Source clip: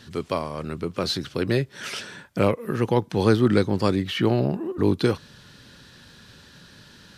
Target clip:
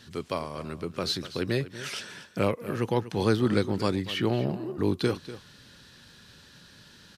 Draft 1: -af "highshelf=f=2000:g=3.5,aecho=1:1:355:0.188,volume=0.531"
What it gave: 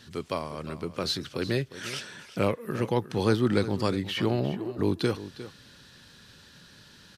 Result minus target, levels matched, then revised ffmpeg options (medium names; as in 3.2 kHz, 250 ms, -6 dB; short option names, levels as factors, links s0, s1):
echo 112 ms late
-af "highshelf=f=2000:g=3.5,aecho=1:1:243:0.188,volume=0.531"